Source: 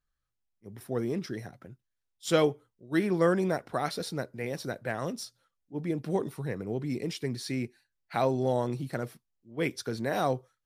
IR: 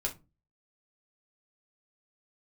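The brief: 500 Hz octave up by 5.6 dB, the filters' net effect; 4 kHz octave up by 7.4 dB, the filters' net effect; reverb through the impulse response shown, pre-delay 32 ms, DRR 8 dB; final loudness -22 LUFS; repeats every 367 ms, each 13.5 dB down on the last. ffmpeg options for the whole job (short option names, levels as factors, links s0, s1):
-filter_complex "[0:a]equalizer=f=500:t=o:g=6.5,equalizer=f=4000:t=o:g=9,aecho=1:1:367|734:0.211|0.0444,asplit=2[s0][s1];[1:a]atrim=start_sample=2205,adelay=32[s2];[s1][s2]afir=irnorm=-1:irlink=0,volume=0.282[s3];[s0][s3]amix=inputs=2:normalize=0,volume=1.68"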